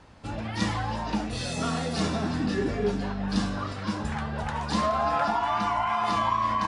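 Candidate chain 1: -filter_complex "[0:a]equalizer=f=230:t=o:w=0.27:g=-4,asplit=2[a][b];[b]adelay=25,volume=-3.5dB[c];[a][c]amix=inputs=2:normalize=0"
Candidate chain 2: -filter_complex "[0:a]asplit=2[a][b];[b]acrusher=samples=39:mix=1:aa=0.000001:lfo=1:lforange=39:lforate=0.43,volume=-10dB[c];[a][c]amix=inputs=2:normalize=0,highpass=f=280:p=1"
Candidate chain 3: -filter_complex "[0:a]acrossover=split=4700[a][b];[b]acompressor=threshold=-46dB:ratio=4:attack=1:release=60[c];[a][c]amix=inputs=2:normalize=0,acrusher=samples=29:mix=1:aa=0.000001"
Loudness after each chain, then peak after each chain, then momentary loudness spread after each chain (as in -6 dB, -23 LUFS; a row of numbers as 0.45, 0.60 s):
-26.5, -29.0, -28.0 LUFS; -12.5, -12.5, -14.0 dBFS; 7, 8, 7 LU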